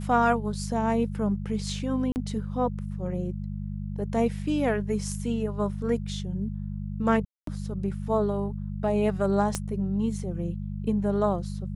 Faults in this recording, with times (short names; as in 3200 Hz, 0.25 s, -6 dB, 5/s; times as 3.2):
hum 50 Hz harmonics 4 -33 dBFS
2.12–2.16 gap 39 ms
7.25–7.47 gap 0.223 s
9.55 pop -13 dBFS